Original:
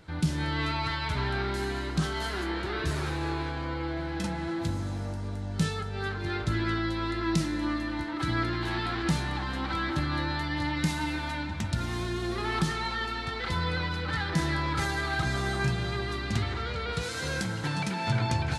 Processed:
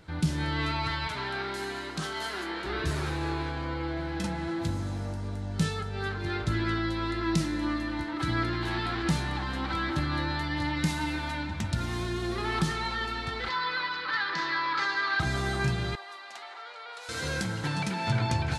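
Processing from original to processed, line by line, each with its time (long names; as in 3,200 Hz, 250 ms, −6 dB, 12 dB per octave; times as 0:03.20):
0:01.07–0:02.66: high-pass filter 410 Hz 6 dB per octave
0:13.49–0:15.20: loudspeaker in its box 480–5,200 Hz, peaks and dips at 500 Hz −4 dB, 720 Hz −9 dB, 1,100 Hz +9 dB, 1,700 Hz +5 dB, 4,500 Hz +5 dB
0:15.95–0:17.09: four-pole ladder high-pass 620 Hz, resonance 45%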